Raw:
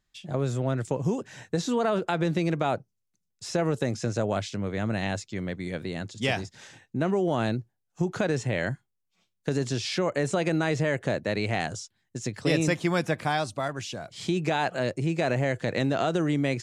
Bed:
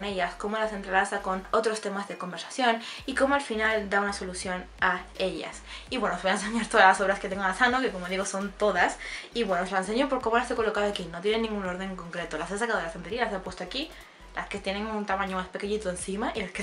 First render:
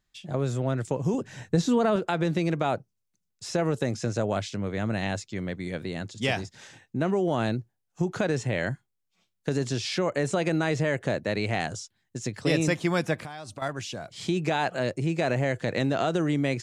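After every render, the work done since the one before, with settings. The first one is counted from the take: 1.14–1.96 low shelf 240 Hz +9.5 dB; 13.15–13.62 compressor 12:1, threshold -34 dBFS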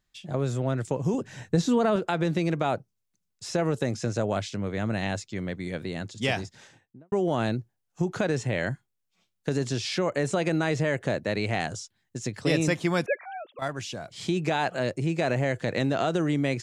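6.44–7.12 studio fade out; 13.06–13.59 sine-wave speech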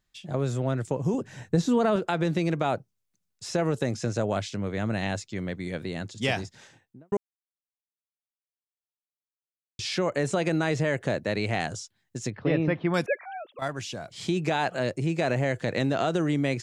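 0.78–1.75 bell 4200 Hz -3 dB 2.6 oct; 7.17–9.79 mute; 12.3–12.94 Gaussian blur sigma 3.2 samples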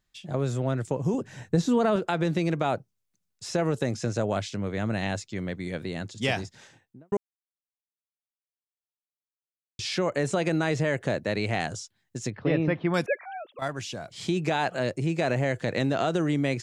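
nothing audible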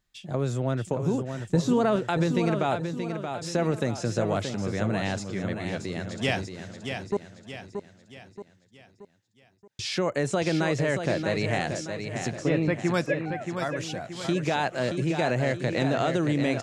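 feedback echo 0.627 s, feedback 46%, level -7 dB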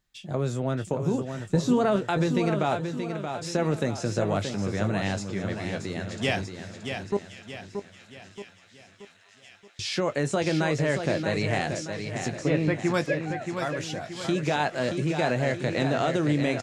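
doubler 20 ms -11.5 dB; thin delay 1.066 s, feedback 78%, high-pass 1800 Hz, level -17 dB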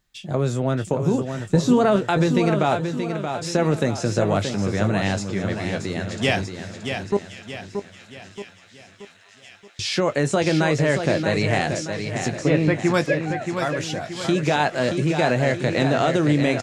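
gain +5.5 dB

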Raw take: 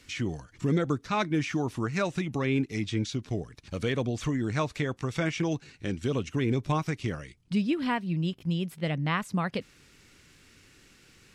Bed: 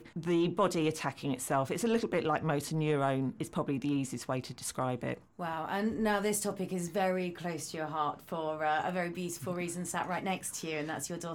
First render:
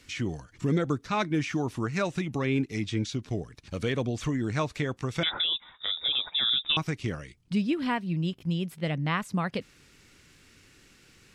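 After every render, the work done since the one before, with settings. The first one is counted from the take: 5.23–6.77 inverted band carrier 3700 Hz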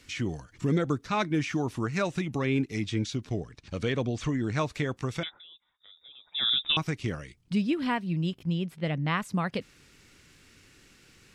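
3.29–4.58 LPF 7500 Hz; 5.14–6.45 dip -23.5 dB, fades 0.17 s; 8.43–9.08 high shelf 6800 Hz -10.5 dB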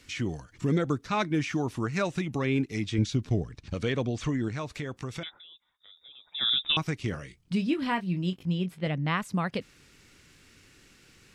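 2.98–3.74 low shelf 250 Hz +7.5 dB; 4.48–6.41 compressor 2:1, threshold -34 dBFS; 7.1–8.87 doubler 22 ms -9 dB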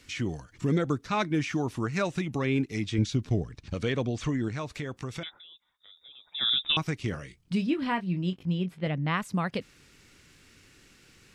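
7.66–9.14 high shelf 5900 Hz -8.5 dB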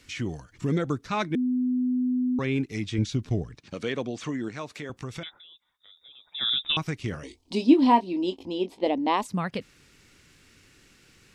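1.35–2.39 bleep 251 Hz -22 dBFS; 3.57–4.9 HPF 200 Hz; 7.23–9.27 EQ curve 100 Hz 0 dB, 150 Hz -28 dB, 250 Hz +12 dB, 570 Hz +8 dB, 930 Hz +14 dB, 1400 Hz -11 dB, 2100 Hz -2 dB, 4200 Hz +9 dB, 8000 Hz +5 dB, 13000 Hz 0 dB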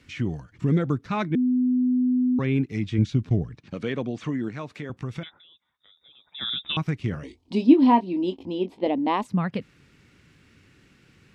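HPF 180 Hz 6 dB/oct; tone controls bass +11 dB, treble -10 dB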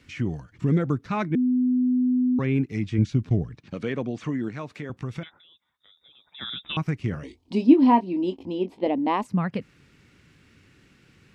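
dynamic EQ 3600 Hz, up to -6 dB, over -53 dBFS, Q 3.1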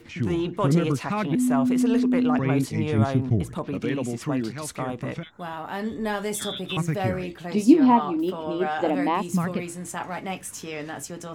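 add bed +2.5 dB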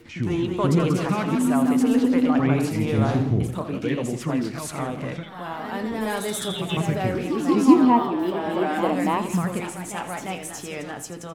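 echoes that change speed 0.227 s, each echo +1 st, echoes 3, each echo -6 dB; feedback echo 83 ms, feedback 47%, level -13.5 dB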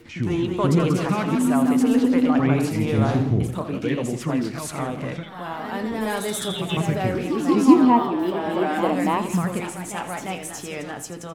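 gain +1 dB

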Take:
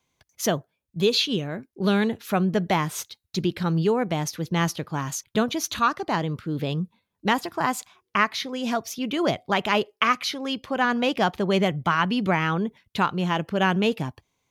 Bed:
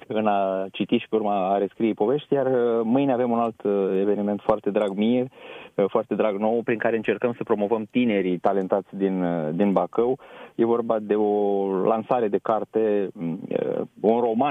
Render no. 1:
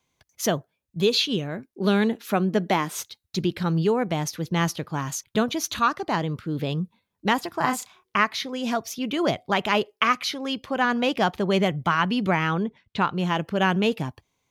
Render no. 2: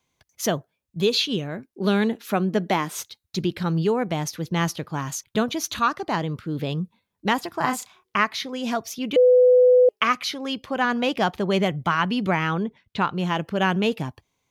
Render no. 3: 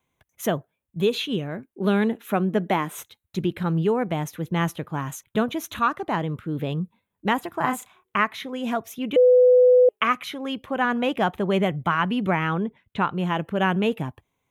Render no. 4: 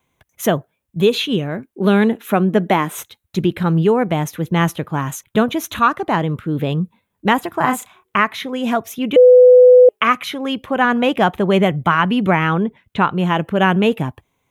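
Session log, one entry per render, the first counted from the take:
1.73–2.95 resonant low shelf 160 Hz -10.5 dB, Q 1.5; 7.59–8.19 doubler 32 ms -6 dB; 12.63–13.16 air absorption 93 m
9.16–9.89 bleep 500 Hz -11 dBFS
bell 5200 Hz -14.5 dB 0.77 oct; notch 4500 Hz, Q 8
gain +7.5 dB; limiter -2 dBFS, peak gain reduction 2.5 dB

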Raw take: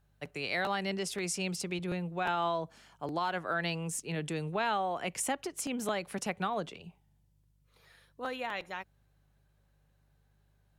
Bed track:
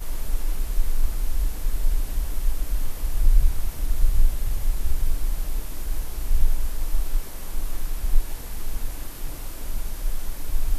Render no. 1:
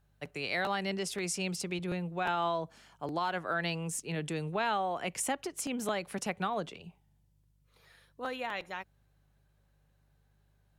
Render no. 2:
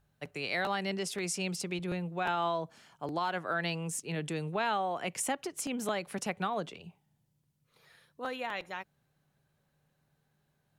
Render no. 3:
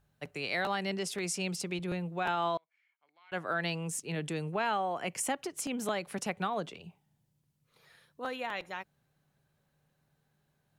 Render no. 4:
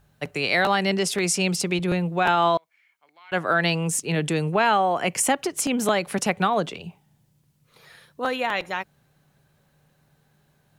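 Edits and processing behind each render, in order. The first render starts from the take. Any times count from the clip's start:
nothing audible
de-hum 50 Hz, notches 2
2.57–3.32 band-pass 2200 Hz, Q 19; 4.4–5.25 notch 3700 Hz, Q 6.2
gain +11.5 dB

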